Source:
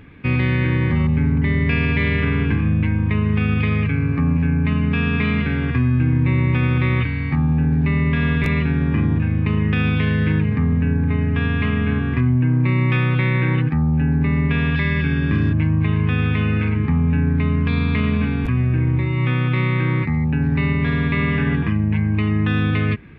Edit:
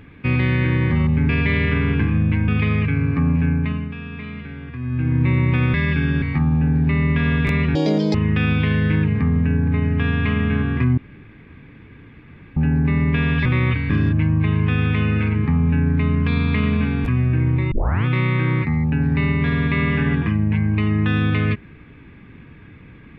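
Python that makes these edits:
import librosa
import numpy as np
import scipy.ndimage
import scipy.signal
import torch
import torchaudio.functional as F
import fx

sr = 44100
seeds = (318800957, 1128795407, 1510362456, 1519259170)

y = fx.edit(x, sr, fx.cut(start_s=1.29, length_s=0.51),
    fx.cut(start_s=2.99, length_s=0.5),
    fx.fade_down_up(start_s=4.5, length_s=1.73, db=-13.0, fade_s=0.45),
    fx.swap(start_s=6.75, length_s=0.44, other_s=14.82, other_length_s=0.48),
    fx.speed_span(start_s=8.72, length_s=0.79, speed=2.0),
    fx.room_tone_fill(start_s=12.34, length_s=1.59),
    fx.tape_start(start_s=19.12, length_s=0.34), tone=tone)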